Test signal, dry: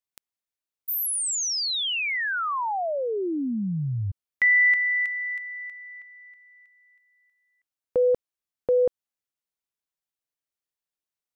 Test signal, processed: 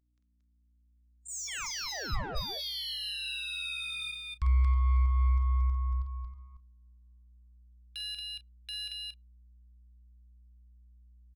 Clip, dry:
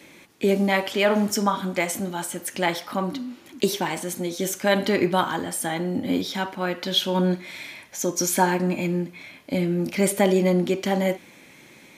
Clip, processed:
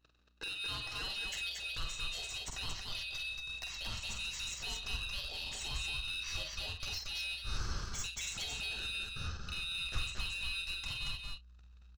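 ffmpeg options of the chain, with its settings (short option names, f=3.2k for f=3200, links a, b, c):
-filter_complex "[0:a]afftfilt=real='real(if(lt(b,272),68*(eq(floor(b/68),0)*1+eq(floor(b/68),1)*3+eq(floor(b/68),2)*0+eq(floor(b/68),3)*2)+mod(b,68),b),0)':imag='imag(if(lt(b,272),68*(eq(floor(b/68),0)*1+eq(floor(b/68),1)*3+eq(floor(b/68),2)*0+eq(floor(b/68),3)*2)+mod(b,68),b),0)':win_size=2048:overlap=0.75,aresample=16000,aresample=44100,highshelf=f=5.8k:g=-8,acrossover=split=430|5900[a][b][c];[c]dynaudnorm=f=330:g=7:m=10dB[d];[a][b][d]amix=inputs=3:normalize=0,asplit=2[e][f];[f]adelay=110,highpass=300,lowpass=3.4k,asoftclip=type=hard:threshold=-16dB,volume=-28dB[g];[e][g]amix=inputs=2:normalize=0,acompressor=threshold=-31dB:ratio=8:attack=2.1:release=313:knee=6:detection=rms,aeval=exprs='val(0)*sin(2*PI*580*n/s)':c=same,agate=range=-31dB:threshold=-54dB:ratio=16:release=25:detection=peak,asoftclip=type=tanh:threshold=-35dB,aeval=exprs='val(0)+0.000178*(sin(2*PI*60*n/s)+sin(2*PI*2*60*n/s)/2+sin(2*PI*3*60*n/s)/3+sin(2*PI*4*60*n/s)/4+sin(2*PI*5*60*n/s)/5)':c=same,asubboost=boost=11.5:cutoff=85,asplit=2[h][i];[i]aecho=0:1:47|224|229|262:0.501|0.211|0.668|0.133[j];[h][j]amix=inputs=2:normalize=0"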